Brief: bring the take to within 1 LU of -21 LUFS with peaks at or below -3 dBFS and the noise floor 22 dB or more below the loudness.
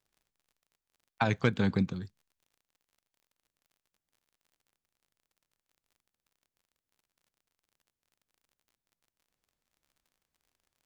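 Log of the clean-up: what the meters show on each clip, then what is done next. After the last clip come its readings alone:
tick rate 34 per s; loudness -30.0 LUFS; peak level -11.0 dBFS; loudness target -21.0 LUFS
-> de-click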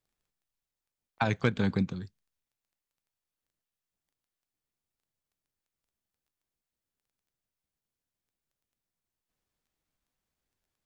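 tick rate 0 per s; loudness -30.0 LUFS; peak level -10.5 dBFS; loudness target -21.0 LUFS
-> trim +9 dB; peak limiter -3 dBFS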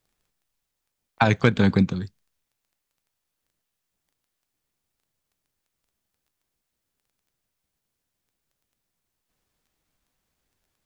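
loudness -21.0 LUFS; peak level -3.0 dBFS; noise floor -82 dBFS

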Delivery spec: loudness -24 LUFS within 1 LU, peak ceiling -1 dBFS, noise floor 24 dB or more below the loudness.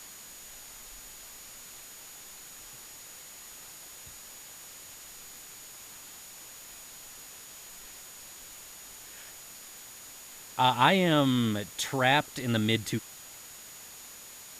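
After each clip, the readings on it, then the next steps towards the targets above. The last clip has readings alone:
steady tone 6.8 kHz; tone level -50 dBFS; noise floor -48 dBFS; noise floor target -51 dBFS; loudness -26.5 LUFS; peak level -8.0 dBFS; loudness target -24.0 LUFS
-> band-stop 6.8 kHz, Q 30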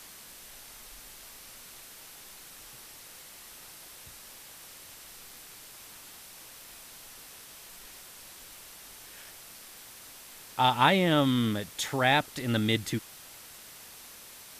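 steady tone not found; noise floor -49 dBFS; noise floor target -51 dBFS
-> noise reduction 6 dB, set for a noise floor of -49 dBFS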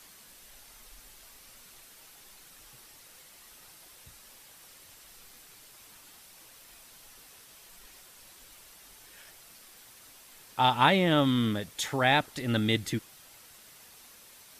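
noise floor -54 dBFS; loudness -26.5 LUFS; peak level -8.0 dBFS; loudness target -24.0 LUFS
-> trim +2.5 dB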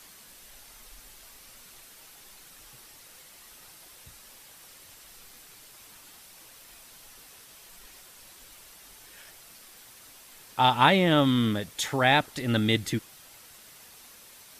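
loudness -24.0 LUFS; peak level -5.5 dBFS; noise floor -52 dBFS

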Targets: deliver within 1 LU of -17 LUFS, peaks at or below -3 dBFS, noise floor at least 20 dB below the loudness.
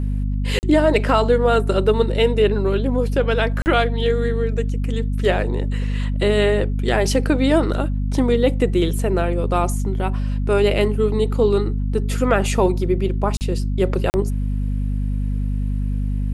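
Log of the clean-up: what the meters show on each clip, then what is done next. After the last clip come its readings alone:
dropouts 4; longest dropout 39 ms; hum 50 Hz; highest harmonic 250 Hz; hum level -19 dBFS; loudness -20.0 LUFS; peak level -3.5 dBFS; loudness target -17.0 LUFS
-> interpolate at 0.59/3.62/13.37/14.10 s, 39 ms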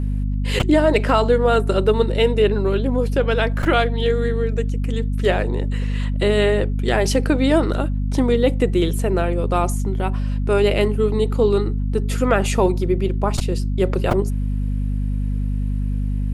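dropouts 0; hum 50 Hz; highest harmonic 250 Hz; hum level -19 dBFS
-> hum notches 50/100/150/200/250 Hz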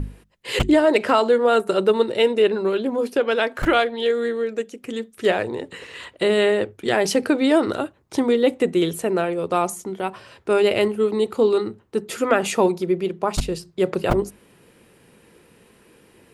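hum not found; loudness -21.0 LUFS; peak level -3.5 dBFS; loudness target -17.0 LUFS
-> trim +4 dB; peak limiter -3 dBFS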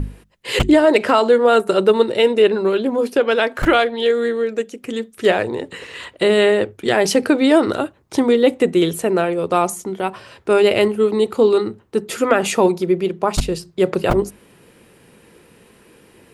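loudness -17.0 LUFS; peak level -3.0 dBFS; noise floor -51 dBFS

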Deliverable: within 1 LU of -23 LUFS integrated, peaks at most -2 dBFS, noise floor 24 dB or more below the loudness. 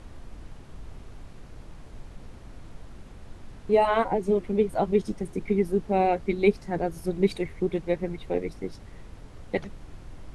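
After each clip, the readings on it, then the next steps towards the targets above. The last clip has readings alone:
noise floor -46 dBFS; noise floor target -51 dBFS; loudness -26.5 LUFS; peak level -8.0 dBFS; loudness target -23.0 LUFS
-> noise print and reduce 6 dB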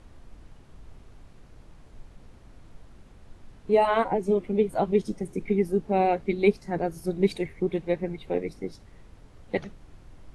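noise floor -52 dBFS; loudness -26.5 LUFS; peak level -8.0 dBFS; loudness target -23.0 LUFS
-> trim +3.5 dB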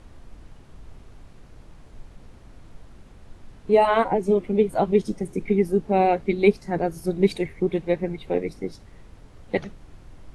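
loudness -23.0 LUFS; peak level -4.5 dBFS; noise floor -49 dBFS

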